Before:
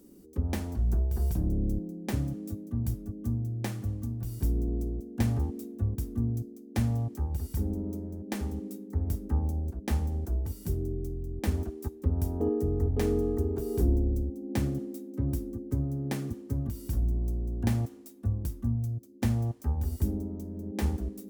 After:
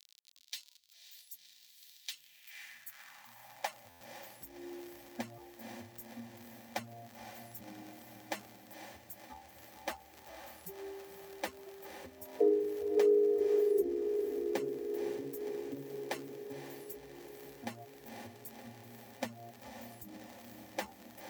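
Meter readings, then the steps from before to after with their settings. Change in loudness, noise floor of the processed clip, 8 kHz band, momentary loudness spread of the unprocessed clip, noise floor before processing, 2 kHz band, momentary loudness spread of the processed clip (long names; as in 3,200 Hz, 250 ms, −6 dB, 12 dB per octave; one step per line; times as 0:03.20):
−5.5 dB, −62 dBFS, −4.0 dB, 7 LU, −49 dBFS, 0.0 dB, 22 LU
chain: spectral dynamics exaggerated over time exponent 3
surface crackle 68 per second −45 dBFS
parametric band 9,800 Hz −5.5 dB 0.47 octaves
feedback delay with all-pass diffusion 528 ms, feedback 69%, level −8.5 dB
downward compressor 2 to 1, threshold −38 dBFS, peak gain reduction 8.5 dB
high-pass filter sweep 3,900 Hz → 440 Hz, 0:02.03–0:04.08
buffer that repeats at 0:03.89, samples 512, times 9
level +5 dB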